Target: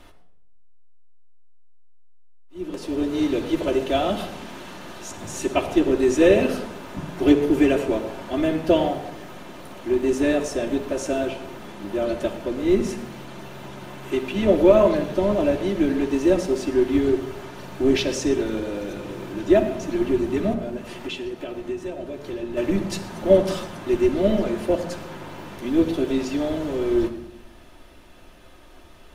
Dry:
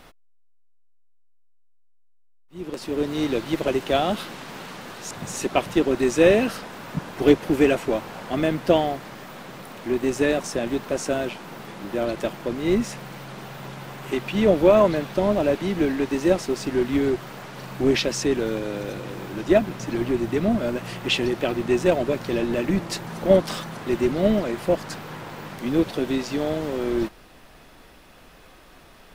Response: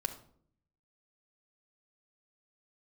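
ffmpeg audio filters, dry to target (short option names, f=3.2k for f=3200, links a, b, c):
-filter_complex "[0:a]asettb=1/sr,asplit=3[a][b][c];[a]atrim=end=20.534[d];[b]atrim=start=20.53:end=22.57,asetpts=PTS-STARTPTS,afade=t=in:d=0.004:c=qsin,afade=t=out:st=2.036:d=0.004:c=qsin,acompressor=threshold=-30dB:ratio=5[e];[c]atrim=start=22.566[f];[d][e]acrossfade=d=0.004:c1=hsin:c2=qsin[g];[g][f]acrossfade=d=0.004:c1=qsin:c2=hsin[h];[1:a]atrim=start_sample=2205,asetrate=27783,aresample=44100[i];[h][i]afir=irnorm=-1:irlink=0,volume=-5.5dB"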